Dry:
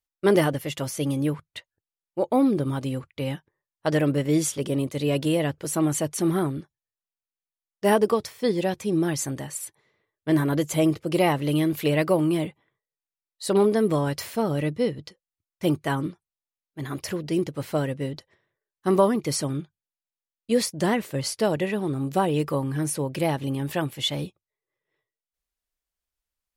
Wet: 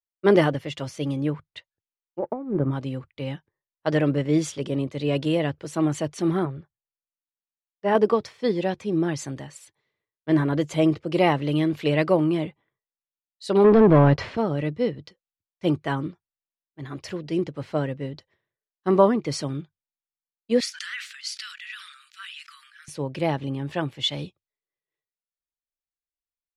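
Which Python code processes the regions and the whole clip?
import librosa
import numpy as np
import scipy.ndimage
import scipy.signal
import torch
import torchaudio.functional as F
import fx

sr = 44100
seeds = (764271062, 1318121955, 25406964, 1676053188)

y = fx.chain(x, sr, fx.law_mismatch(coded='A'),
    fx.lowpass(hz=1500.0, slope=12),
    fx.over_compress(threshold_db=-24.0, ratio=-0.5), at=(2.19, 2.71))
y = fx.chain(y, sr, fx.lowpass(hz=2000.0, slope=6),
    fx.peak_eq(hz=280.0, db=-14.0, octaves=0.58), at=(6.45, 7.95))
y = fx.chain(y, sr, fx.leveller(passes=3),
    fx.spacing_loss(db_at_10k=25), at=(13.64, 14.37))
y = fx.chain(y, sr, fx.steep_highpass(hz=1300.0, slope=72),
    fx.sustainer(db_per_s=42.0), at=(20.6, 22.88))
y = scipy.signal.sosfilt(scipy.signal.butter(2, 4600.0, 'lowpass', fs=sr, output='sos'), y)
y = fx.band_widen(y, sr, depth_pct=40)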